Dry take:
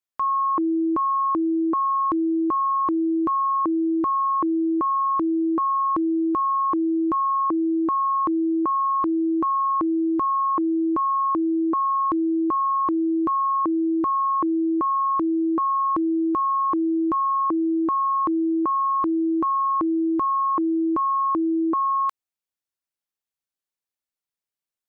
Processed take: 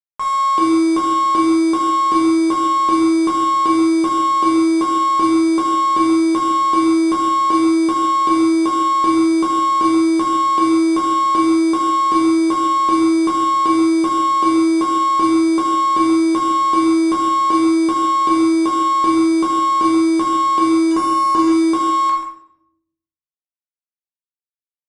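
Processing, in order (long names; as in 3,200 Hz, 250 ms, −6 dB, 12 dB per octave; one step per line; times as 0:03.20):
0:20.91–0:21.48: low-shelf EQ 460 Hz +3.5 dB
log-companded quantiser 4 bits
single-tap delay 134 ms −11 dB
rectangular room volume 160 cubic metres, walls mixed, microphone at 1.3 metres
harmonic generator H 6 −33 dB, 8 −27 dB, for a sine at −4.5 dBFS
downsampling to 22,050 Hz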